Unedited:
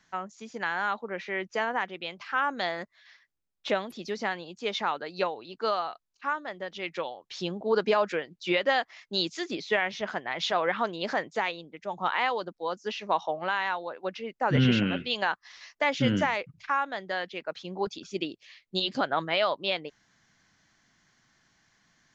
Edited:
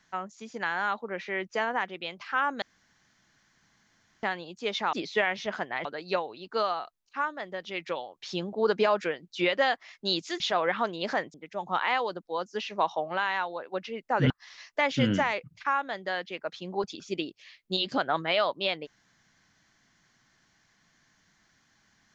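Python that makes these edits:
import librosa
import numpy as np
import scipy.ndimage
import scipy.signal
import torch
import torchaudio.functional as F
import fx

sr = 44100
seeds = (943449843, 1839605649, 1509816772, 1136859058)

y = fx.edit(x, sr, fx.room_tone_fill(start_s=2.62, length_s=1.61),
    fx.move(start_s=9.48, length_s=0.92, to_s=4.93),
    fx.cut(start_s=11.34, length_s=0.31),
    fx.cut(start_s=14.61, length_s=0.72), tone=tone)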